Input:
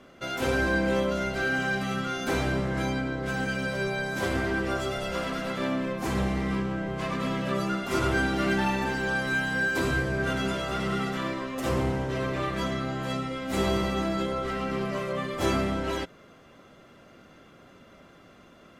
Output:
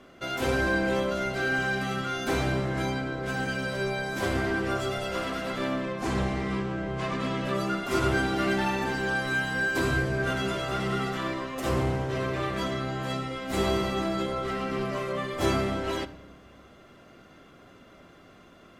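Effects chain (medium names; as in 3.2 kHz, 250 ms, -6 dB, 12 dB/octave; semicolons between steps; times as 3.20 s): 5.81–7.45 s: low-pass 9 kHz 12 dB/octave; on a send: reverberation RT60 1.0 s, pre-delay 3 ms, DRR 13 dB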